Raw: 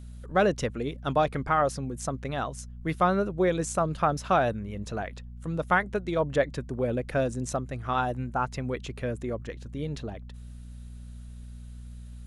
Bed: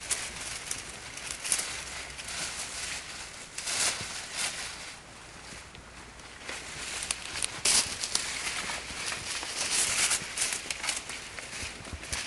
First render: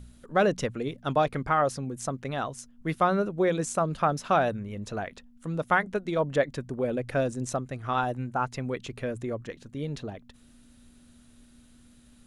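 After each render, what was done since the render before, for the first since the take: de-hum 60 Hz, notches 3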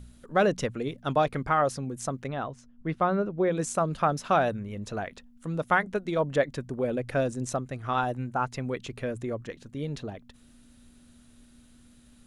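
2.27–3.57 s: tape spacing loss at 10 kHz 21 dB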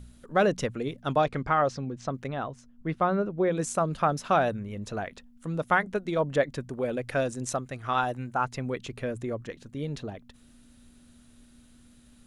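1.21–2.13 s: low-pass 8.4 kHz -> 4.7 kHz 24 dB/octave; 6.69–8.45 s: tilt shelf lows -3 dB, about 690 Hz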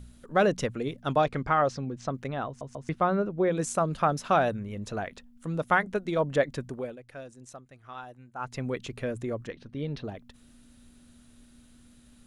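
2.47 s: stutter in place 0.14 s, 3 plays; 6.69–8.61 s: dip -15.5 dB, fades 0.27 s; 9.48–10.04 s: Savitzky-Golay filter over 15 samples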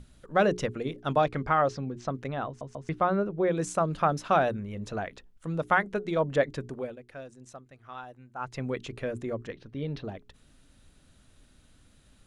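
treble shelf 8.7 kHz -9 dB; hum notches 60/120/180/240/300/360/420 Hz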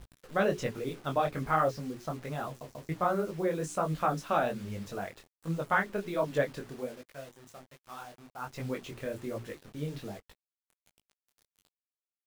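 bit crusher 8-bit; detune thickener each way 44 cents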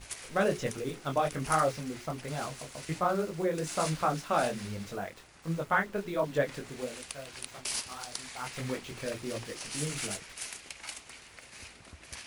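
add bed -10.5 dB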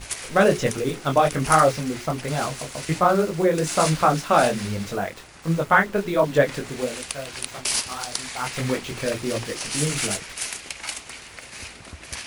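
trim +10.5 dB

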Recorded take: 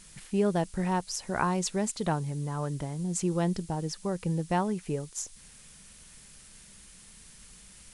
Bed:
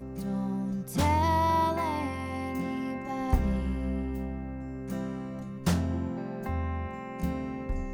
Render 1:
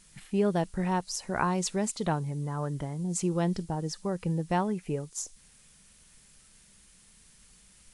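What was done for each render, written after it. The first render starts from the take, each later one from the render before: noise print and reduce 6 dB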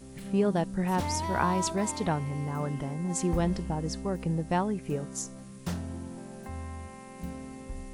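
add bed -7.5 dB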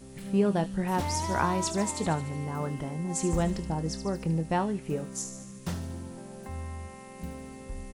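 doubling 25 ms -12 dB; feedback echo behind a high-pass 74 ms, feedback 62%, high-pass 3.2 kHz, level -8.5 dB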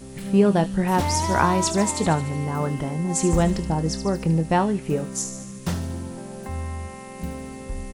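trim +7.5 dB

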